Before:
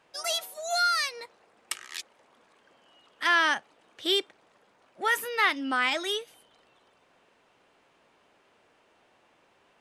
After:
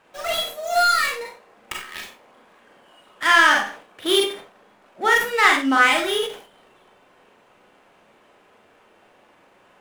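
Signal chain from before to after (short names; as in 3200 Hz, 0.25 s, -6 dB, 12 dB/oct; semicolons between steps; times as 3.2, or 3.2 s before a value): median filter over 9 samples; Schroeder reverb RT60 0.3 s, combs from 30 ms, DRR -0.5 dB; sustainer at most 120 dB/s; gain +6.5 dB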